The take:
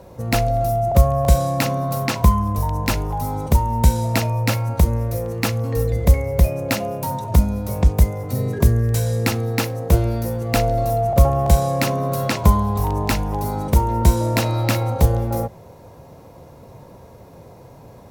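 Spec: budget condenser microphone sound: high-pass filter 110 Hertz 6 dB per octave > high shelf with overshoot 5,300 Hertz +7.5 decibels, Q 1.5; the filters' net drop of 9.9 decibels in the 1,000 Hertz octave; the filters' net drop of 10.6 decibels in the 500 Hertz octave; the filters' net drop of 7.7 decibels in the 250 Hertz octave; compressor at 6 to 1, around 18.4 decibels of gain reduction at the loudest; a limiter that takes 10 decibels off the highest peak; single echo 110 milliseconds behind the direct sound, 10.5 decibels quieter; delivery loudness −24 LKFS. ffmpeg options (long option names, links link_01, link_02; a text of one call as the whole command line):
ffmpeg -i in.wav -af "equalizer=frequency=250:width_type=o:gain=-7,equalizer=frequency=500:width_type=o:gain=-9,equalizer=frequency=1000:width_type=o:gain=-8.5,acompressor=threshold=-29dB:ratio=6,alimiter=level_in=0.5dB:limit=-24dB:level=0:latency=1,volume=-0.5dB,highpass=frequency=110:poles=1,highshelf=frequency=5300:width_type=q:width=1.5:gain=7.5,aecho=1:1:110:0.299,volume=11dB" out.wav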